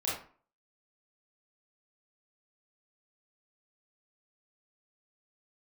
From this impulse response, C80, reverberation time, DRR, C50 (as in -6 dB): 8.0 dB, 0.45 s, -7.0 dB, 2.0 dB